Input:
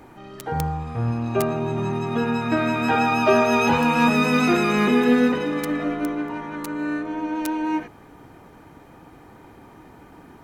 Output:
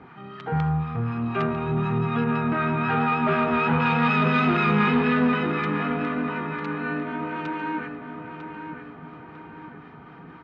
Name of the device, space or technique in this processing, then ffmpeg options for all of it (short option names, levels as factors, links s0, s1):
guitar amplifier with harmonic tremolo: -filter_complex "[0:a]acrossover=split=860[s0][s1];[s0]aeval=exprs='val(0)*(1-0.5/2+0.5/2*cos(2*PI*4*n/s))':c=same[s2];[s1]aeval=exprs='val(0)*(1-0.5/2-0.5/2*cos(2*PI*4*n/s))':c=same[s3];[s2][s3]amix=inputs=2:normalize=0,asoftclip=type=tanh:threshold=0.1,highpass=100,equalizer=f=110:t=q:w=4:g=-4,equalizer=f=160:t=q:w=4:g=7,equalizer=f=310:t=q:w=4:g=-9,equalizer=f=570:t=q:w=4:g=-10,equalizer=f=860:t=q:w=4:g=-3,equalizer=f=1300:t=q:w=4:g=5,lowpass=f=3400:w=0.5412,lowpass=f=3400:w=1.3066,asettb=1/sr,asplit=3[s4][s5][s6];[s4]atrim=end=2.244[s7];[s5]atrim=start=2.24:end=3.8,asetpts=PTS-STARTPTS,afade=t=in:d=0.004:c=qsin,afade=t=out:st=1.556:d=0.004:c=qsin,aemphasis=mode=reproduction:type=75kf[s8];[s6]atrim=start=3.796[s9];[s7][s8]acrossfade=d=0.004:c1=hsin:c2=qsin[s10];[s10][s9]acrossfade=d=0.004:c1=qsin:c2=hsin,asplit=2[s11][s12];[s12]adelay=949,lowpass=f=3300:p=1,volume=0.398,asplit=2[s13][s14];[s14]adelay=949,lowpass=f=3300:p=1,volume=0.48,asplit=2[s15][s16];[s16]adelay=949,lowpass=f=3300:p=1,volume=0.48,asplit=2[s17][s18];[s18]adelay=949,lowpass=f=3300:p=1,volume=0.48,asplit=2[s19][s20];[s20]adelay=949,lowpass=f=3300:p=1,volume=0.48,asplit=2[s21][s22];[s22]adelay=949,lowpass=f=3300:p=1,volume=0.48[s23];[s11][s13][s15][s17][s19][s21][s23]amix=inputs=7:normalize=0,volume=1.58"